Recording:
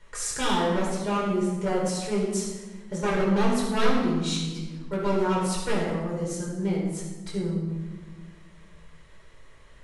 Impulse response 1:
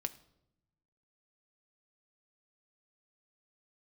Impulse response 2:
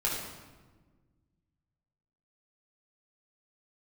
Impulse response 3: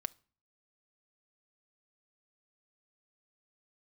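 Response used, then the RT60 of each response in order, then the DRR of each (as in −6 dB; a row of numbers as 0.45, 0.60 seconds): 2; 0.80 s, 1.4 s, non-exponential decay; 8.5, −5.5, 13.5 decibels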